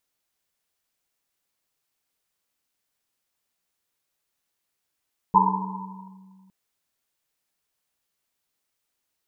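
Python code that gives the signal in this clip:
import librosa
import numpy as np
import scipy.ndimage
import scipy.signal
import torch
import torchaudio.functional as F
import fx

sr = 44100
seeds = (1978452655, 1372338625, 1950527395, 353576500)

y = fx.risset_drum(sr, seeds[0], length_s=1.16, hz=190.0, decay_s=2.45, noise_hz=950.0, noise_width_hz=150.0, noise_pct=65)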